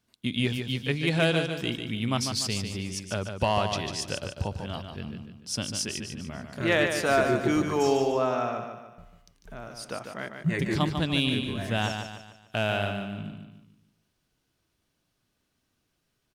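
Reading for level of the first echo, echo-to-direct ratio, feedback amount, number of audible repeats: −6.5 dB, −5.5 dB, 42%, 4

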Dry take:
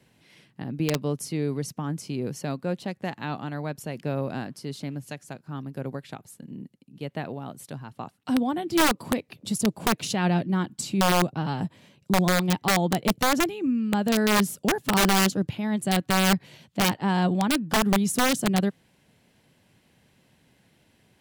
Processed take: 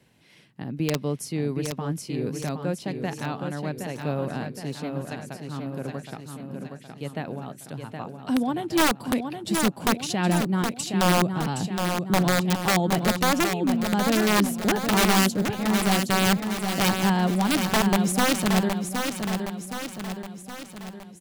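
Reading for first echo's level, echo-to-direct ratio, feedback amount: −6.0 dB, −4.5 dB, 53%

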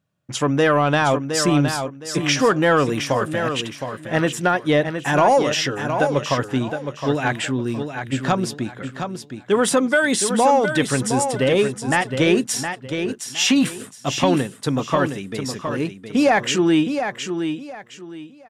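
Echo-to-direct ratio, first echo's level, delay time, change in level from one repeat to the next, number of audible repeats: −7.0 dB, −7.5 dB, 715 ms, −11.5 dB, 3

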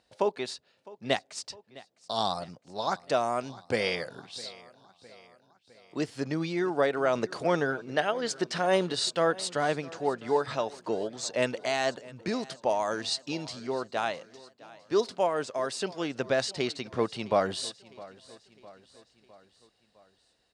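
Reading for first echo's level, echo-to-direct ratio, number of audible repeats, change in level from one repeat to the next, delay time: −20.5 dB, −19.0 dB, 3, −5.0 dB, 658 ms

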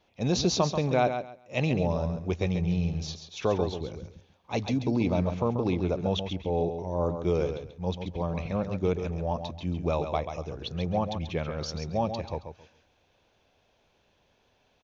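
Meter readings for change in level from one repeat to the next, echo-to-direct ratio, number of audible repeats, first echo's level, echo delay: −13.5 dB, −8.0 dB, 2, −8.0 dB, 136 ms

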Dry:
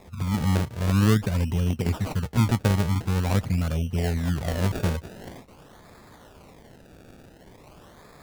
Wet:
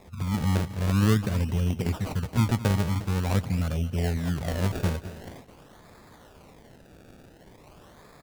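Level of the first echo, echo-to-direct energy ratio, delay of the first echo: −15.5 dB, −15.5 dB, 219 ms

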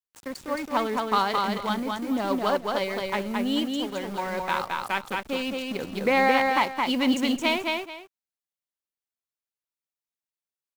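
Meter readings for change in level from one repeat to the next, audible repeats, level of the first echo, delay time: −12.5 dB, 2, −3.0 dB, 218 ms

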